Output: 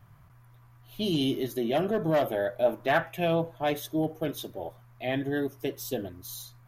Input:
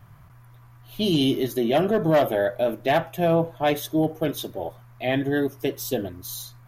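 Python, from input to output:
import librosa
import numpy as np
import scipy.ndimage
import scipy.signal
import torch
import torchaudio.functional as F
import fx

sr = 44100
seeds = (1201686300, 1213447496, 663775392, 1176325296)

y = fx.peak_eq(x, sr, hz=fx.line((2.63, 690.0), (3.41, 4000.0)), db=11.5, octaves=0.7, at=(2.63, 3.41), fade=0.02)
y = y * 10.0 ** (-6.0 / 20.0)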